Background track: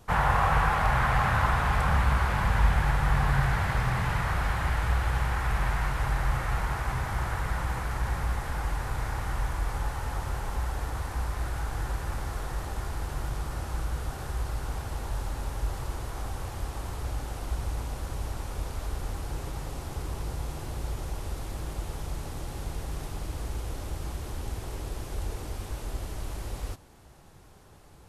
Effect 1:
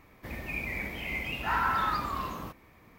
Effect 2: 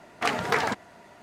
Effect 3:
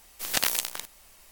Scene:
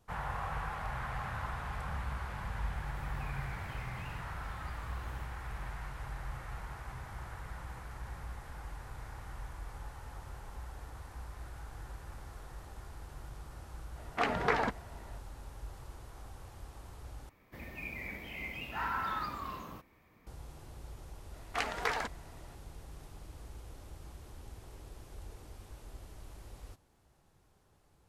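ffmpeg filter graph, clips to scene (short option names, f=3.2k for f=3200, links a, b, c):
-filter_complex "[1:a]asplit=2[a][b];[2:a]asplit=2[c][d];[0:a]volume=-14.5dB[e];[a]acompressor=threshold=-42dB:ratio=6:attack=3.2:release=140:knee=1:detection=peak[f];[c]aemphasis=mode=reproduction:type=75fm[g];[d]highpass=f=470:p=1[h];[e]asplit=2[i][j];[i]atrim=end=17.294[k];[b]atrim=end=2.98,asetpts=PTS-STARTPTS,volume=-7.5dB[l];[j]atrim=start=20.266[m];[f]atrim=end=2.98,asetpts=PTS-STARTPTS,volume=-7dB,afade=t=in:d=0.004:c=hsin,afade=t=out:st=2.976:d=0.004:c=hsin,adelay=2730[n];[g]atrim=end=1.22,asetpts=PTS-STARTPTS,volume=-4.5dB,afade=t=in:d=0.004:c=hsin,afade=t=out:st=1.216:d=0.004:c=hsin,adelay=615636S[o];[h]atrim=end=1.22,asetpts=PTS-STARTPTS,volume=-7.5dB,afade=t=in:d=0.004:c=hsin,afade=t=out:st=1.216:d=0.004:c=hsin,adelay=21330[p];[k][l]acrossfade=d=0.004:c1=hsin:c2=hsin[q];[q][m]acrossfade=d=0.004:c1=hsin:c2=hsin[r];[r][n][o][p]amix=inputs=4:normalize=0"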